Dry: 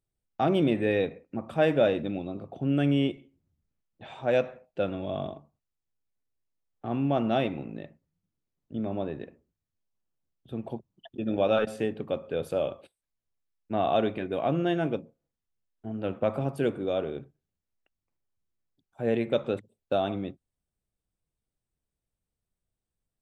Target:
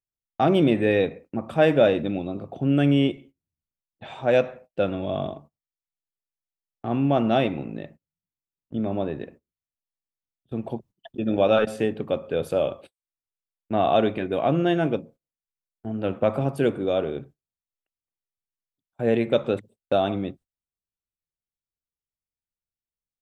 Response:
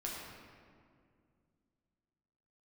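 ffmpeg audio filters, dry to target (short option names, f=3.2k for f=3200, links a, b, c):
-af "agate=range=-20dB:threshold=-51dB:ratio=16:detection=peak,volume=5dB"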